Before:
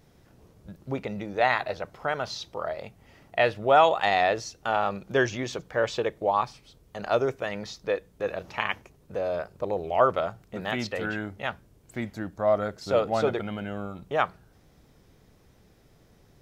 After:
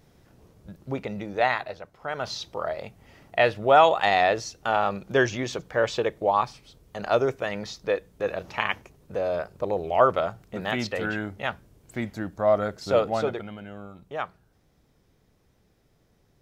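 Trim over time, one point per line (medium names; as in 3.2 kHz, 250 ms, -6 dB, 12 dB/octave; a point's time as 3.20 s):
1.43 s +0.5 dB
1.93 s -9 dB
2.27 s +2 dB
12.99 s +2 dB
13.58 s -6.5 dB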